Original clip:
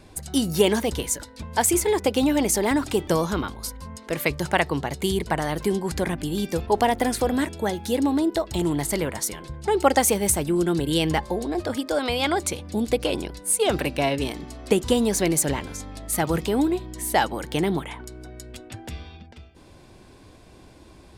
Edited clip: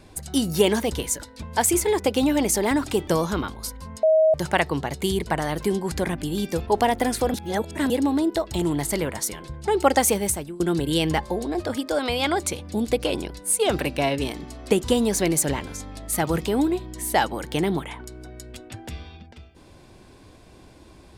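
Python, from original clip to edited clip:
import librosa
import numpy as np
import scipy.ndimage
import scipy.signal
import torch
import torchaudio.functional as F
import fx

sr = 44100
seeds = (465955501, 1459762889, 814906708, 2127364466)

y = fx.edit(x, sr, fx.bleep(start_s=4.03, length_s=0.31, hz=633.0, db=-13.5),
    fx.reverse_span(start_s=7.34, length_s=0.56),
    fx.fade_out_to(start_s=10.16, length_s=0.44, floor_db=-23.0), tone=tone)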